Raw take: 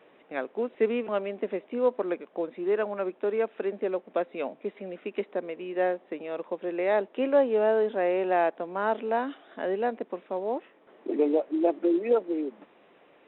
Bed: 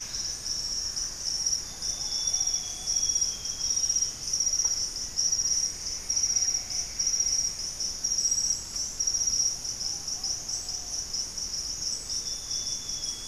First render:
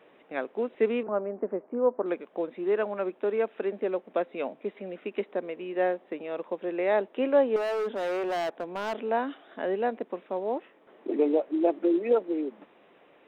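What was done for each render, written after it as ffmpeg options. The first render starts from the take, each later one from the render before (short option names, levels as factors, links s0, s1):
-filter_complex "[0:a]asettb=1/sr,asplit=3[s0][s1][s2];[s0]atrim=end=1.034[s3];[s1]atrim=start=1.03:end=2.06,asetpts=PTS-STARTPTS,afade=t=in:d=0.004:c=qsin,afade=t=out:st=1.026:d=0.004:c=qsin,lowpass=f=1400:w=0.5412,lowpass=f=1400:w=1.3066[s4];[s2]atrim=start=2.056[s5];[s3][s4]acrossfade=d=0.004:c1=hsin:c2=qsin[s6];[s6][s5]acrossfade=d=0.004:c1=qsin:c2=hsin,asettb=1/sr,asplit=3[s7][s8][s9];[s7]atrim=end=7.564[s10];[s8]atrim=start=7.56:end=8.94,asetpts=PTS-STARTPTS,afade=t=in:d=0.004:c=qsin,afade=t=out:st=1.376:d=0.004:c=qsin,asoftclip=type=hard:threshold=0.0473[s11];[s9]atrim=start=8.936[s12];[s10][s11]acrossfade=d=0.004:c1=hsin:c2=qsin[s13];[s13][s12]acrossfade=d=0.004:c1=qsin:c2=hsin"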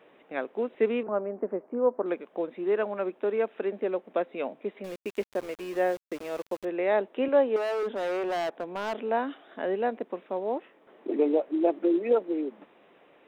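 -filter_complex "[0:a]asettb=1/sr,asplit=3[s0][s1][s2];[s0]atrim=end=4.844[s3];[s1]atrim=start=4.84:end=6.65,asetpts=PTS-STARTPTS,afade=t=in:d=0.004:c=qsin,afade=t=out:st=1.806:d=0.004:c=qsin,aeval=exprs='val(0)*gte(abs(val(0)),0.00891)':c=same[s4];[s2]atrim=start=6.646[s5];[s3][s4]acrossfade=d=0.004:c1=hsin:c2=qsin[s6];[s6][s5]acrossfade=d=0.004:c1=qsin:c2=hsin,asettb=1/sr,asplit=3[s7][s8][s9];[s7]atrim=end=7.284[s10];[s8]atrim=start=7.28:end=7.83,asetpts=PTS-STARTPTS,afade=t=in:d=0.004:c=qsin,afade=t=out:st=0.546:d=0.004:c=qsin,highpass=210[s11];[s9]atrim=start=7.826[s12];[s10][s11]acrossfade=d=0.004:c1=hsin:c2=qsin[s13];[s13][s12]acrossfade=d=0.004:c1=qsin:c2=hsin"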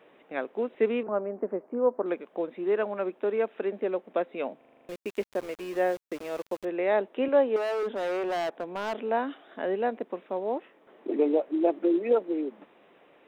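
-filter_complex "[0:a]asplit=9[s0][s1][s2][s3][s4][s5][s6][s7][s8];[s0]atrim=end=4.612[s9];[s1]atrim=start=4.568:end=4.612[s10];[s2]atrim=start=4.568:end=4.612[s11];[s3]atrim=start=4.568:end=4.612[s12];[s4]atrim=start=4.568:end=4.612[s13];[s5]atrim=start=4.568:end=4.612[s14];[s6]atrim=start=4.568:end=4.612[s15];[s7]atrim=start=4.568:end=4.612[s16];[s8]atrim=start=4.888[s17];[s9][s10]acrossfade=d=0.004:c1=hsin:c2=hsin[s18];[s18][s11]acrossfade=d=0.004:c1=hsin:c2=hsin[s19];[s19][s12]acrossfade=d=0.004:c1=hsin:c2=hsin[s20];[s20][s13]acrossfade=d=0.004:c1=hsin:c2=hsin[s21];[s21][s14]acrossfade=d=0.004:c1=hsin:c2=hsin[s22];[s22][s15]acrossfade=d=0.004:c1=hsin:c2=hsin[s23];[s23][s16]acrossfade=d=0.004:c1=hsin:c2=hsin[s24];[s24][s17]acrossfade=d=0.004:c1=hsin:c2=hsin"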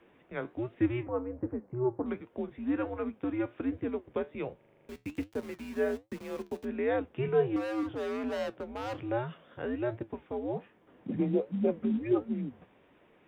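-af "flanger=delay=8.5:depth=4.4:regen=70:speed=1.3:shape=sinusoidal,afreqshift=-120"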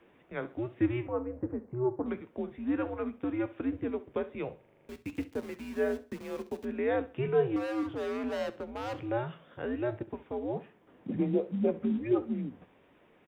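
-af "aecho=1:1:66|132|198:0.141|0.0424|0.0127"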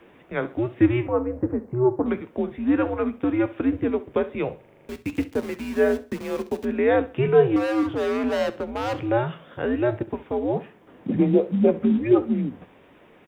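-af "volume=3.16"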